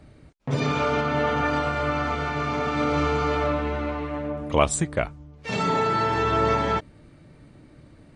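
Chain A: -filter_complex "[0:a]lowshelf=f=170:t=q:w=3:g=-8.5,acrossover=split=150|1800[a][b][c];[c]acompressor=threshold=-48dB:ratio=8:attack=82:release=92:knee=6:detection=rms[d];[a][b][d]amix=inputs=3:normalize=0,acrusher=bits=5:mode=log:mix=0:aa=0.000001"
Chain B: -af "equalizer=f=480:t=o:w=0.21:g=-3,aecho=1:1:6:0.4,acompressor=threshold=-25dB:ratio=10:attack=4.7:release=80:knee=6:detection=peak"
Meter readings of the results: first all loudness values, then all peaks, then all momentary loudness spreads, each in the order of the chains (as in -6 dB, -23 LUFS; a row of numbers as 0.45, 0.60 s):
-24.5, -29.5 LUFS; -5.5, -15.5 dBFS; 7, 6 LU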